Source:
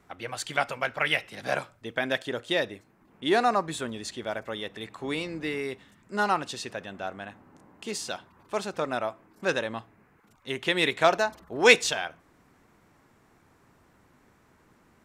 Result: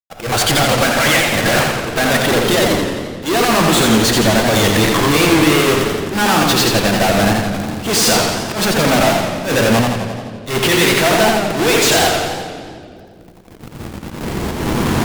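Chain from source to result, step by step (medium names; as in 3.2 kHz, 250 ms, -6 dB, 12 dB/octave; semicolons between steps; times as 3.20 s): square wave that keeps the level; recorder AGC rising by 6.4 dB/s; fuzz box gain 36 dB, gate -44 dBFS; reverberation RT60 2.6 s, pre-delay 6 ms, DRR 7.5 dB; slow attack 114 ms; modulated delay 86 ms, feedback 63%, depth 134 cents, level -3.5 dB; trim -1 dB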